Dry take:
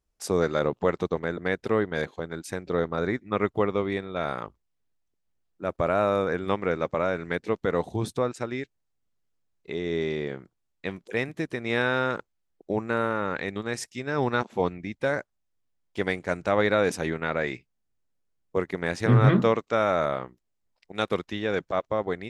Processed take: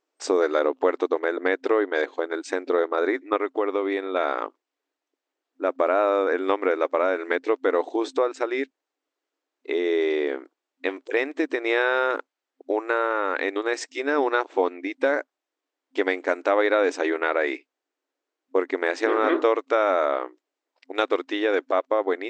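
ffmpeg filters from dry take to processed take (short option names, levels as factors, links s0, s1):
-filter_complex "[0:a]asettb=1/sr,asplit=3[s0][s1][s2];[s0]atrim=end=3.364[s3];[s1]atrim=start=3.36:end=4.12,asetpts=PTS-STARTPTS,afade=t=in:d=0.004:c=qsin,afade=t=out:st=0.756:d=0.004:c=qsin,acompressor=threshold=0.0355:ratio=2:attack=3.2:release=140:knee=1:detection=peak[s4];[s2]atrim=start=4.116[s5];[s3][s4]acrossfade=d=0.004:c1=hsin:c2=qsin[s6];[s6][s5]acrossfade=d=0.004:c1=qsin:c2=hsin,asettb=1/sr,asplit=3[s7][s8][s9];[s7]atrim=end=12.184[s10];[s8]atrim=start=12.18:end=13.38,asetpts=PTS-STARTPTS,afade=t=in:d=0.004:c=qsin,afade=t=out:st=1.196:d=0.004:c=qsin,highpass=f=390:p=1[s11];[s9]atrim=start=13.376[s12];[s10][s11]acrossfade=d=0.004:c1=hsin:c2=qsin[s13];[s13][s12]acrossfade=d=0.004:c1=qsin:c2=hsin,afftfilt=real='re*between(b*sr/4096,260,8400)':imag='im*between(b*sr/4096,260,8400)':win_size=4096:overlap=0.75,highshelf=f=5200:g=-11.5,acompressor=threshold=0.0316:ratio=2,volume=2.82"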